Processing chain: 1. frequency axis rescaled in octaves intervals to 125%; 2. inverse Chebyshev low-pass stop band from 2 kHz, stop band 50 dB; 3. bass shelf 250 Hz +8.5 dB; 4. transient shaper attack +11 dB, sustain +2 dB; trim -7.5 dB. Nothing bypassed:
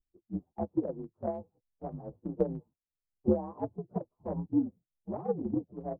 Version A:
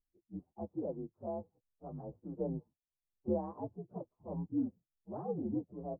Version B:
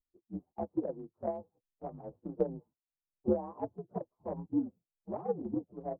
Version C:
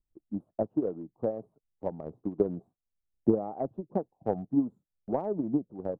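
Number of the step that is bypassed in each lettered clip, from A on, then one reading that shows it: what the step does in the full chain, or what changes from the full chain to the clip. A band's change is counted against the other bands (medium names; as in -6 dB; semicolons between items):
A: 4, loudness change -6.0 LU; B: 3, 125 Hz band -4.5 dB; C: 1, 125 Hz band -3.0 dB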